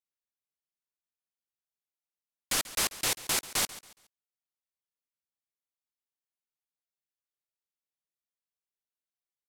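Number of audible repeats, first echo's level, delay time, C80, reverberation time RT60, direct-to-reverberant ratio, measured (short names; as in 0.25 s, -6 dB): 2, -17.0 dB, 0.139 s, none, none, none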